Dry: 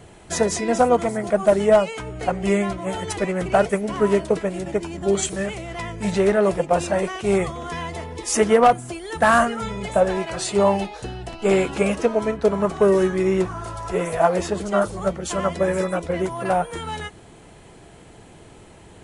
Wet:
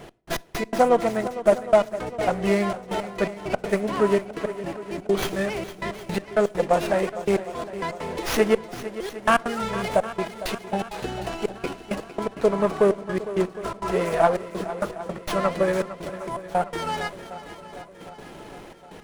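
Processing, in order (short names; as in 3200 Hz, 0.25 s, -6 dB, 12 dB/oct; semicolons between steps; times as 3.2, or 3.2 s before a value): bell 83 Hz -13.5 dB 1.2 oct; in parallel at +2.5 dB: compressor, threshold -31 dBFS, peak gain reduction 19 dB; on the sum: step gate "x..x..x.xxxxxx.." 165 bpm -60 dB; swung echo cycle 0.76 s, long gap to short 1.5:1, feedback 51%, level -14 dB; on a send at -20.5 dB: reverb RT60 0.60 s, pre-delay 6 ms; on the sum: running maximum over 5 samples; gain -2.5 dB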